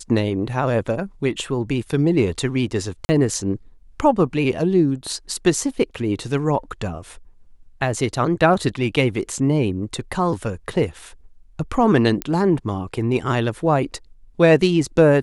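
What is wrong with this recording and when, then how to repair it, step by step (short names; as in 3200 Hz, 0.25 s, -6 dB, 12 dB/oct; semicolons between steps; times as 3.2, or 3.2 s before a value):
3.05–3.09 gap 40 ms
12.22 pop -8 dBFS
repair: de-click; interpolate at 3.05, 40 ms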